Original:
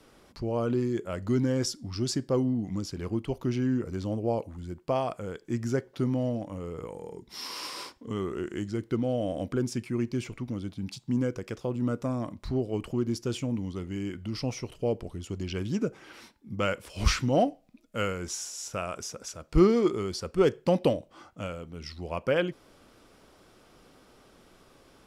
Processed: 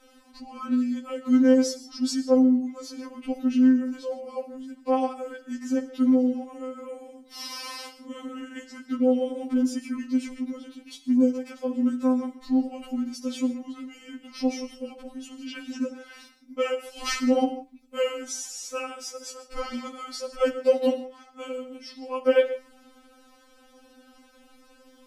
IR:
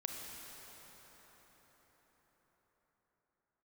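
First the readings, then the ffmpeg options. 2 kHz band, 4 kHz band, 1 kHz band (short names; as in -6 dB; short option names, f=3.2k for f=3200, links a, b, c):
+0.5 dB, +1.0 dB, +1.0 dB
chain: -filter_complex "[0:a]asplit=2[a][b];[1:a]atrim=start_sample=2205,afade=t=out:st=0.22:d=0.01,atrim=end_sample=10143[c];[b][c]afir=irnorm=-1:irlink=0,volume=2dB[d];[a][d]amix=inputs=2:normalize=0,afftfilt=real='re*3.46*eq(mod(b,12),0)':imag='im*3.46*eq(mod(b,12),0)':win_size=2048:overlap=0.75,volume=-2.5dB"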